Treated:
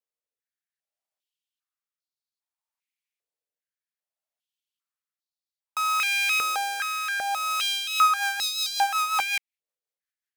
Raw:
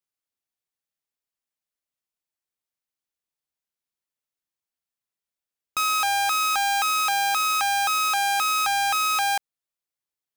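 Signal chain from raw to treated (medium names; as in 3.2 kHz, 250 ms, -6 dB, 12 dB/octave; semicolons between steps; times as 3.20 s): rotary cabinet horn 0.6 Hz, later 5.5 Hz, at 7.40 s; step-sequenced high-pass 2.5 Hz 480–4200 Hz; trim -3 dB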